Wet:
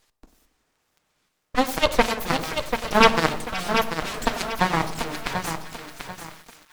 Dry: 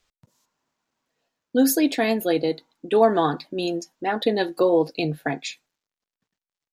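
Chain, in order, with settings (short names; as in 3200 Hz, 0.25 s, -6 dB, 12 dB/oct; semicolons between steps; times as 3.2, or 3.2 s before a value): 1.71–3.16 bell 240 Hz +14.5 dB 0.21 oct; full-wave rectifier; added harmonics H 3 -36 dB, 5 -8 dB, 7 -13 dB, 8 -12 dB, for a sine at -4 dBFS; split-band echo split 1200 Hz, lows 92 ms, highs 0.522 s, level -14 dB; reverb RT60 0.65 s, pre-delay 6 ms, DRR 13.5 dB; lo-fi delay 0.739 s, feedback 35%, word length 8-bit, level -7 dB; gain +6 dB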